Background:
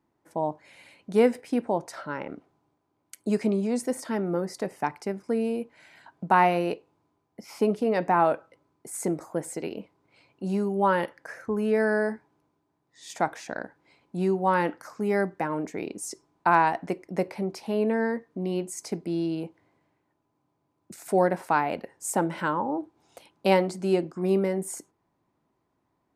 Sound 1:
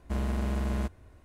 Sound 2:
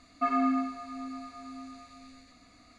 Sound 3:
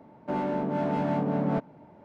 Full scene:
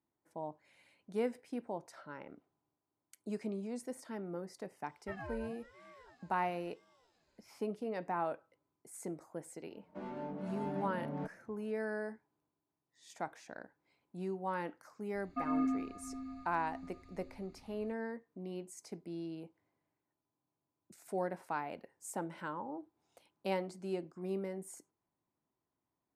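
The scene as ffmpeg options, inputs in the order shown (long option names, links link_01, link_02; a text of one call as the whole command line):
ffmpeg -i bed.wav -i cue0.wav -i cue1.wav -i cue2.wav -filter_complex "[2:a]asplit=2[link_01][link_02];[0:a]volume=-14.5dB[link_03];[link_01]aeval=exprs='val(0)*sin(2*PI*600*n/s+600*0.5/1*sin(2*PI*1*n/s))':channel_layout=same[link_04];[3:a]asplit=2[link_05][link_06];[link_06]adelay=5.4,afreqshift=2.2[link_07];[link_05][link_07]amix=inputs=2:normalize=1[link_08];[link_02]bass=frequency=250:gain=15,treble=frequency=4000:gain=-8[link_09];[link_04]atrim=end=2.78,asetpts=PTS-STARTPTS,volume=-15.5dB,afade=type=in:duration=0.004:curve=hsin,afade=type=out:start_time=2.776:duration=0.004:curve=hsin,adelay=4860[link_10];[link_08]atrim=end=2.04,asetpts=PTS-STARTPTS,volume=-11dB,afade=type=in:duration=0.004:curve=hsin,afade=type=out:start_time=2.036:duration=0.004:curve=hsin,adelay=9670[link_11];[link_09]atrim=end=2.78,asetpts=PTS-STARTPTS,volume=-11.5dB,afade=type=in:duration=0.004:curve=hsin,afade=type=out:start_time=2.776:duration=0.004:curve=hsin,adelay=15150[link_12];[link_03][link_10][link_11][link_12]amix=inputs=4:normalize=0" out.wav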